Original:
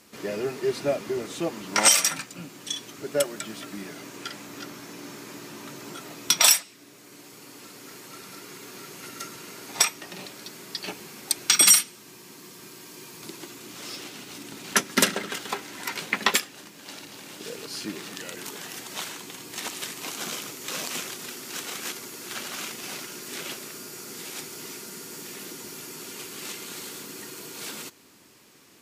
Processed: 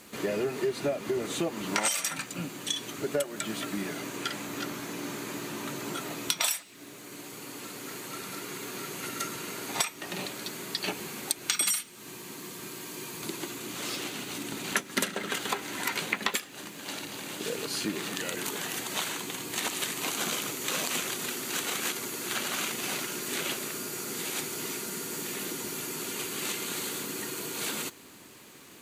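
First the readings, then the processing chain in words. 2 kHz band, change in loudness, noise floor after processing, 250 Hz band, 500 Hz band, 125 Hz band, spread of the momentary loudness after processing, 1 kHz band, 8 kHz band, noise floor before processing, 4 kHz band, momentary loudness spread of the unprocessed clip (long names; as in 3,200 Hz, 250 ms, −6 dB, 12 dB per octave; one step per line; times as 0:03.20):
−2.0 dB, −6.0 dB, −48 dBFS, +1.0 dB, −1.5 dB, +1.5 dB, 10 LU, −2.0 dB, −6.5 dB, −49 dBFS, −5.0 dB, 20 LU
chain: parametric band 5,300 Hz −9 dB 0.2 octaves
downward compressor 5 to 1, threshold −31 dBFS, peak gain reduction 16.5 dB
surface crackle 380 per second −53 dBFS
level +4.5 dB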